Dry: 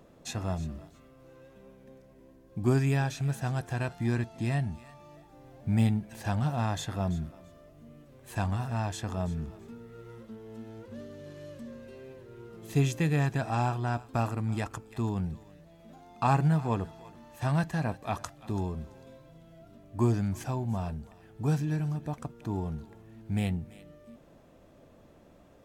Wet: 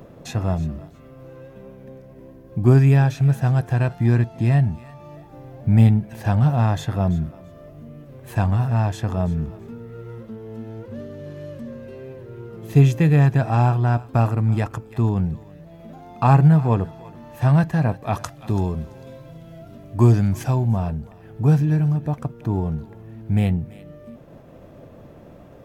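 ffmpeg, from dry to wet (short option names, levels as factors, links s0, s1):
-filter_complex "[0:a]asettb=1/sr,asplit=3[s0][s1][s2];[s0]atrim=end=18.134[s3];[s1]atrim=start=18.13:end=20.68,asetpts=PTS-STARTPTS,afade=t=in:d=0.004:c=qsin,afade=t=out:st=2.546:d=0.004:c=qsin,equalizer=f=7400:t=o:w=3:g=6.5[s4];[s2]atrim=start=20.676[s5];[s3][s4]acrossfade=d=0.004:c1=hsin:c2=qsin[s6];[s6][s5]acrossfade=d=0.004:c1=qsin:c2=hsin,agate=range=0.0224:threshold=0.00251:ratio=3:detection=peak,equalizer=f=125:t=o:w=1:g=7,equalizer=f=500:t=o:w=1:g=3,equalizer=f=4000:t=o:w=1:g=-3,equalizer=f=8000:t=o:w=1:g=-7,acompressor=mode=upward:threshold=0.00891:ratio=2.5,volume=2.11"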